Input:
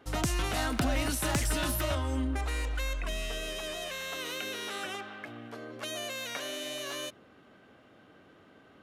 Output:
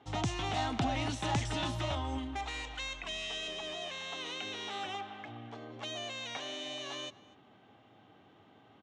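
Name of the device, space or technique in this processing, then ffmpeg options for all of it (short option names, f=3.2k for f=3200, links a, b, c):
car door speaker: -filter_complex "[0:a]lowpass=10k,highpass=81,equalizer=f=110:t=q:w=4:g=8,equalizer=f=540:t=q:w=4:g=-5,equalizer=f=810:t=q:w=4:g=9,equalizer=f=1.5k:t=q:w=4:g=-6,equalizer=f=3.4k:t=q:w=4:g=5,equalizer=f=4.8k:t=q:w=4:g=-5,lowpass=f=6.8k:w=0.5412,lowpass=f=6.8k:w=1.3066,asettb=1/sr,asplit=3[a][b][c];[a]atrim=end=2.184[d];[b]atrim=start=2.18:end=3.48,asetpts=PTS-STARTPTS,afade=t=in:d=0.004:c=qsin,afade=t=out:st=1.296:d=0.004:c=qsin,tiltshelf=f=1.2k:g=-4.5[e];[c]atrim=start=3.476[f];[d][e]acrossfade=d=0.004:c1=hsin:c2=qsin[g];[g][f]acrossfade=d=0.004:c1=qsin:c2=hsin,asplit=2[h][i];[i]adelay=244.9,volume=-20dB,highshelf=f=4k:g=-5.51[j];[h][j]amix=inputs=2:normalize=0,volume=-3.5dB"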